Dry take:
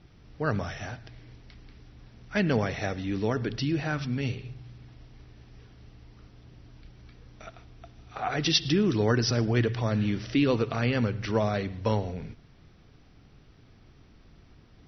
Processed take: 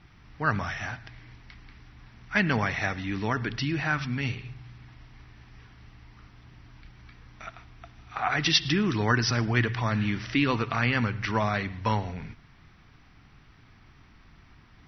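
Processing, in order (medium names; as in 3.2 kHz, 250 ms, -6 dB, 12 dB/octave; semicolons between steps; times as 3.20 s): graphic EQ 500/1000/2000 Hz -8/+7/+7 dB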